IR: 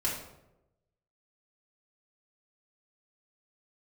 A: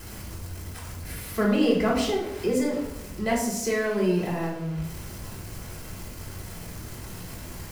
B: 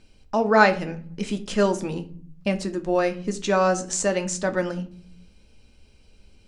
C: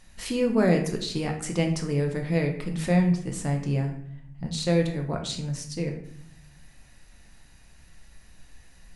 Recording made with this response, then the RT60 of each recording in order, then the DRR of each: A; 0.90 s, 0.50 s, 0.65 s; -7.0 dB, 7.0 dB, 2.5 dB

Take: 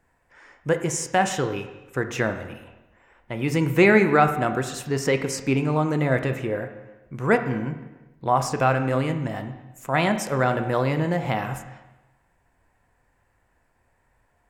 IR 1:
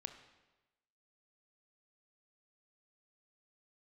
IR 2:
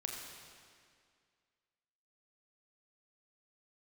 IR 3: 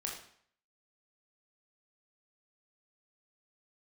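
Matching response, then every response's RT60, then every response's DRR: 1; 1.1 s, 2.1 s, 0.60 s; 7.5 dB, 0.0 dB, -1.5 dB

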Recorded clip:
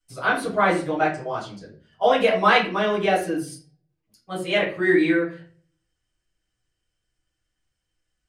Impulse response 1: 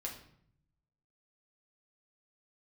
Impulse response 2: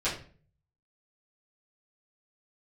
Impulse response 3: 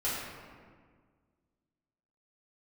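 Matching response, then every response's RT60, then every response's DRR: 2; 0.65 s, 0.45 s, 1.7 s; -1.5 dB, -11.5 dB, -10.0 dB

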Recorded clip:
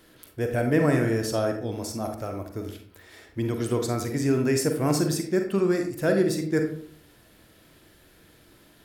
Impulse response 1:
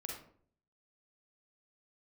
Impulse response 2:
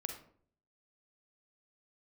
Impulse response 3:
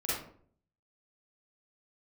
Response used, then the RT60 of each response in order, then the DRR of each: 2; 0.55 s, 0.55 s, 0.55 s; -1.0 dB, 4.0 dB, -9.5 dB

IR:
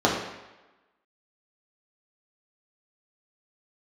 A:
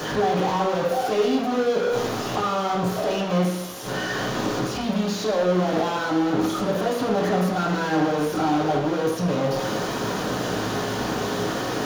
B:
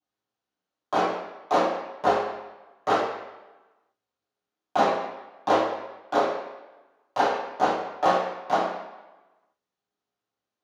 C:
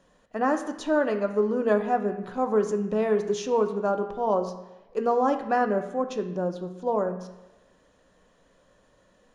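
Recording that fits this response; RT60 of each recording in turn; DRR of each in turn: A; 1.1 s, 1.1 s, 1.1 s; -4.0 dB, -11.0 dB, 6.0 dB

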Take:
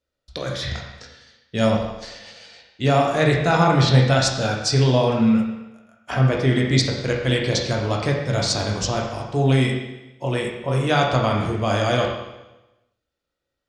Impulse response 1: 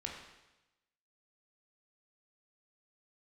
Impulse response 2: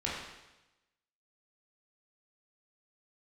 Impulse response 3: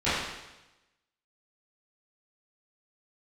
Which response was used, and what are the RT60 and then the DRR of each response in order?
1; 1.0 s, 1.0 s, 1.0 s; -1.0 dB, -6.5 dB, -16.5 dB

